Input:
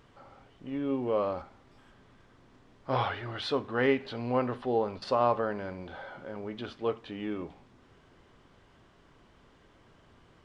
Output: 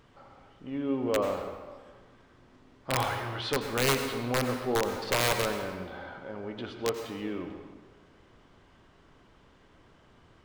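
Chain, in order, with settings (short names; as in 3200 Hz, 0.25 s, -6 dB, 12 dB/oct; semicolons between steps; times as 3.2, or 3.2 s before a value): wrapped overs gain 18.5 dB; on a send: reverb RT60 1.5 s, pre-delay 80 ms, DRR 6 dB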